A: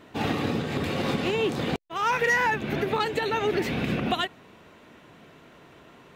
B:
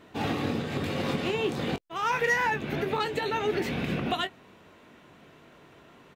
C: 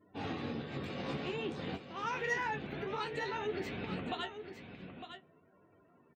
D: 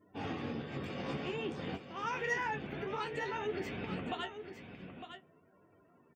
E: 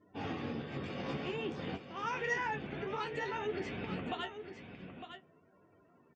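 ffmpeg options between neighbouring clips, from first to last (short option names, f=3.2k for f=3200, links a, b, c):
-filter_complex "[0:a]asplit=2[a][b];[b]adelay=21,volume=-10dB[c];[a][c]amix=inputs=2:normalize=0,volume=-3dB"
-af "flanger=delay=9.5:depth=6.6:regen=45:speed=0.53:shape=triangular,afftdn=nr=27:nf=-56,aecho=1:1:906:0.335,volume=-6dB"
-af "bandreject=f=4k:w=5.9"
-af "lowpass=f=7.1k:w=0.5412,lowpass=f=7.1k:w=1.3066"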